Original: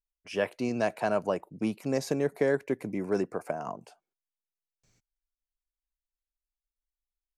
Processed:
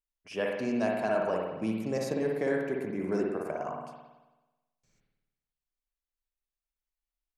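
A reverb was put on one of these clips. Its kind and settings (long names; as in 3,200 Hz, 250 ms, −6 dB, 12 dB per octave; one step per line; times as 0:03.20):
spring reverb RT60 1.1 s, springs 54 ms, chirp 35 ms, DRR −0.5 dB
level −4 dB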